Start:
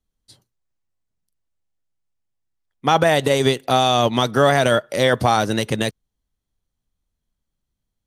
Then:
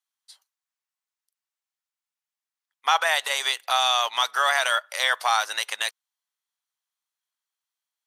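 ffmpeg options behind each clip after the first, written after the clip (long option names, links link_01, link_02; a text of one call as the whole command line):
ffmpeg -i in.wav -af "highpass=frequency=920:width=0.5412,highpass=frequency=920:width=1.3066" out.wav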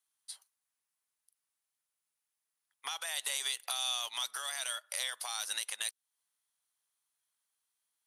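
ffmpeg -i in.wav -filter_complex "[0:a]equalizer=frequency=10000:width=2.4:gain=11.5,alimiter=limit=-18.5dB:level=0:latency=1:release=362,acrossover=split=240|3000[link_01][link_02][link_03];[link_02]acompressor=threshold=-42dB:ratio=10[link_04];[link_01][link_04][link_03]amix=inputs=3:normalize=0" out.wav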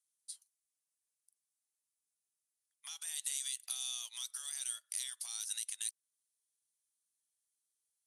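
ffmpeg -i in.wav -af "bandpass=frequency=8000:width_type=q:width=1.3:csg=0,volume=1dB" out.wav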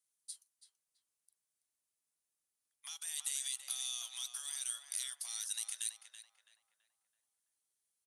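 ffmpeg -i in.wav -filter_complex "[0:a]asplit=2[link_01][link_02];[link_02]adelay=331,lowpass=frequency=1800:poles=1,volume=-4dB,asplit=2[link_03][link_04];[link_04]adelay=331,lowpass=frequency=1800:poles=1,volume=0.51,asplit=2[link_05][link_06];[link_06]adelay=331,lowpass=frequency=1800:poles=1,volume=0.51,asplit=2[link_07][link_08];[link_08]adelay=331,lowpass=frequency=1800:poles=1,volume=0.51,asplit=2[link_09][link_10];[link_10]adelay=331,lowpass=frequency=1800:poles=1,volume=0.51,asplit=2[link_11][link_12];[link_12]adelay=331,lowpass=frequency=1800:poles=1,volume=0.51,asplit=2[link_13][link_14];[link_14]adelay=331,lowpass=frequency=1800:poles=1,volume=0.51[link_15];[link_01][link_03][link_05][link_07][link_09][link_11][link_13][link_15]amix=inputs=8:normalize=0" out.wav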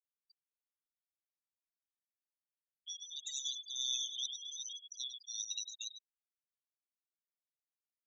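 ffmpeg -i in.wav -af "aresample=16000,aresample=44100,aecho=1:1:102|204|306|408|510|612:0.562|0.259|0.119|0.0547|0.0252|0.0116,afftfilt=real='re*gte(hypot(re,im),0.0158)':imag='im*gte(hypot(re,im),0.0158)':win_size=1024:overlap=0.75,volume=5dB" out.wav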